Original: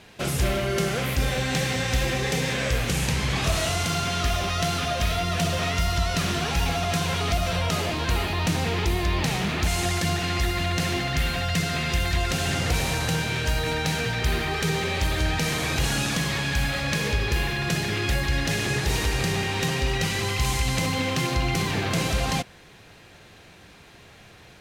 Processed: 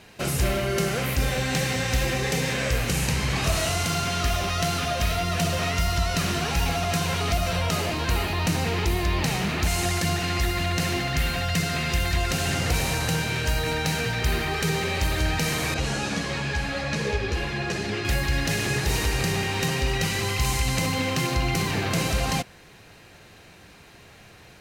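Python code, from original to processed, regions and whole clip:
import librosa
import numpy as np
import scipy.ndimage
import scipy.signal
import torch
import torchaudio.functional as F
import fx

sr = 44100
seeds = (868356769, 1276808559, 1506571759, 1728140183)

y = fx.chain(x, sr, fx.lowpass(hz=7100.0, slope=12),
    fx.peak_eq(hz=490.0, db=5.0, octaves=1.5),
    fx.ensemble(), at=(15.74, 18.05))
y = fx.high_shelf(y, sr, hz=12000.0, db=5.5)
y = fx.notch(y, sr, hz=3400.0, q=14.0)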